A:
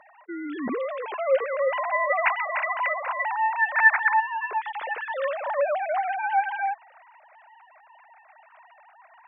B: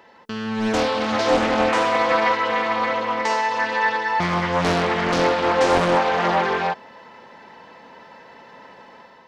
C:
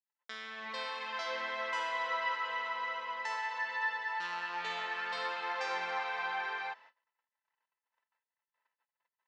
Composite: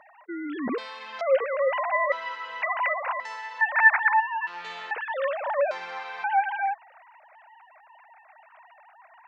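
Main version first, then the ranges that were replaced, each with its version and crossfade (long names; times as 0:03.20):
A
0:00.78–0:01.21: punch in from C
0:02.12–0:02.62: punch in from C
0:03.20–0:03.61: punch in from C
0:04.47–0:04.91: punch in from C
0:05.71–0:06.24: punch in from C
not used: B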